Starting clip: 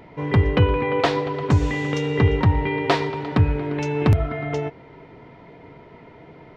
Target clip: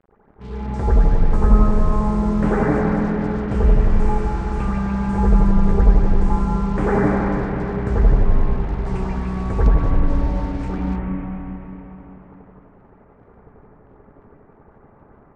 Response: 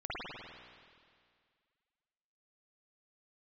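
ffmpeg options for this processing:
-filter_complex "[0:a]acrusher=bits=5:mix=0:aa=0.5[a];[1:a]atrim=start_sample=2205,asetrate=61740,aresample=44100[b];[a][b]afir=irnorm=-1:irlink=0,asetrate=18846,aresample=44100,volume=1.5dB"

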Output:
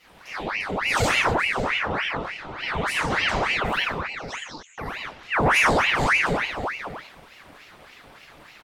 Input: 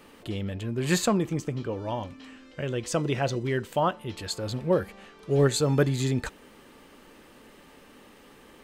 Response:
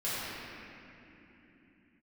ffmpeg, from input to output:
-filter_complex "[0:a]asettb=1/sr,asplit=3[a][b][c];[a]atrim=end=3.794[d];[b]atrim=start=3.79:end=4.78,asetpts=PTS-STARTPTS,afade=t=in:d=0.004:c=qsin,afade=t=out:st=0.986:d=0.004:c=qsin,asuperpass=centerf=5200:order=4:qfactor=3.9[e];[c]atrim=start=4.776[f];[d][e]acrossfade=d=0.004:c1=hsin:c2=qsin[g];[g][f]acrossfade=d=0.004:c1=qsin:c2=hsin,asplit=2[h][i];[i]adelay=553.9,volume=-9dB,highshelf=f=4k:g=-12.5[j];[h][j]amix=inputs=2:normalize=0[k];[1:a]atrim=start_sample=2205,afade=t=out:st=0.33:d=0.01,atrim=end_sample=14994[l];[k][l]afir=irnorm=-1:irlink=0,asoftclip=type=tanh:threshold=-9dB,aeval=exprs='val(0)*sin(2*PI*1400*n/s+1400*0.8/3.4*sin(2*PI*3.4*n/s))':c=same"

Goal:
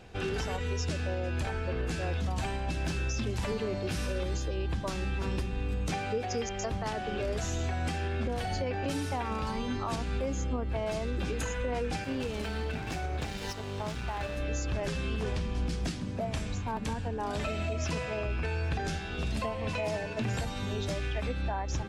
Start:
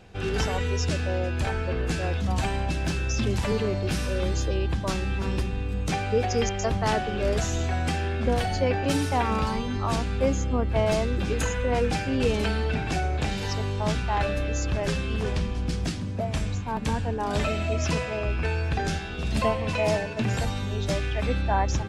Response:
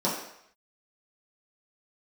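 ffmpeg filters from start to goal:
-filter_complex "[0:a]bandreject=f=50:t=h:w=6,bandreject=f=100:t=h:w=6,bandreject=f=150:t=h:w=6,bandreject=f=200:t=h:w=6,alimiter=limit=-23.5dB:level=0:latency=1:release=300,asettb=1/sr,asplit=3[a][b][c];[a]atrim=end=12.044[d];[b]atrim=start=12.04:end=14.38,asetpts=PTS-STARTPTS,afade=t=in:d=0.004:c=qsin,afade=t=out:st=2.336:d=0.004:c=qsin,aeval=exprs='sgn(val(0))*max(abs(val(0))-0.0075,0)':c=same[e];[c]atrim=start=14.376[f];[d][e]acrossfade=d=0.004:c1=hsin:c2=qsin[g];[g][f]acrossfade=d=0.004:c1=qsin:c2=hsin"

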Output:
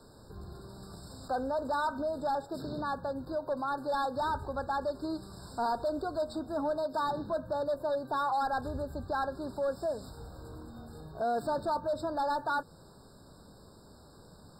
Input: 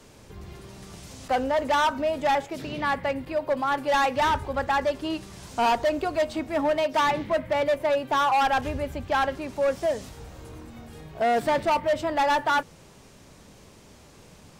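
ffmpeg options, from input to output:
-af "alimiter=limit=-23dB:level=0:latency=1:release=163,asuperstop=centerf=2000:order=8:qfactor=2.5,afftfilt=real='re*eq(mod(floor(b*sr/1024/1800),2),0)':imag='im*eq(mod(floor(b*sr/1024/1800),2),0)':win_size=1024:overlap=0.75,volume=-3.5dB"

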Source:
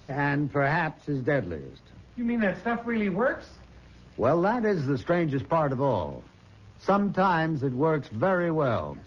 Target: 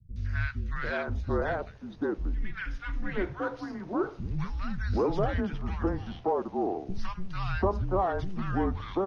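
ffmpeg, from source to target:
-filter_complex "[0:a]afreqshift=-190,acrossover=split=190|1300[a][b][c];[c]adelay=160[d];[b]adelay=740[e];[a][e][d]amix=inputs=3:normalize=0,aresample=22050,aresample=44100,volume=-2dB"

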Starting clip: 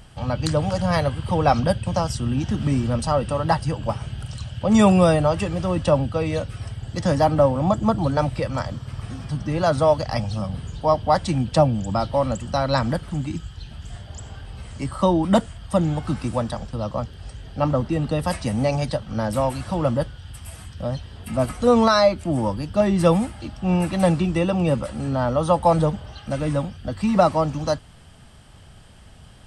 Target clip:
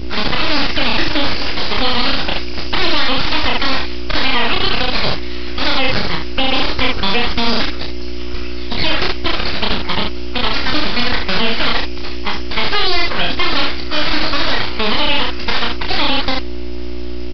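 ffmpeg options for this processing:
-filter_complex "[0:a]highpass=1.4k,agate=range=-8dB:threshold=-43dB:ratio=16:detection=peak,asetrate=74970,aresample=44100,aeval=exprs='val(0)+0.00447*(sin(2*PI*60*n/s)+sin(2*PI*2*60*n/s)/2+sin(2*PI*3*60*n/s)/3+sin(2*PI*4*60*n/s)/4+sin(2*PI*5*60*n/s)/5)':c=same,aeval=exprs='abs(val(0))':c=same,asplit=2[a][b];[b]aecho=0:1:30|72:0.668|0.398[c];[a][c]amix=inputs=2:normalize=0,aresample=11025,aresample=44100,alimiter=level_in=26.5dB:limit=-1dB:release=50:level=0:latency=1,volume=-1dB"

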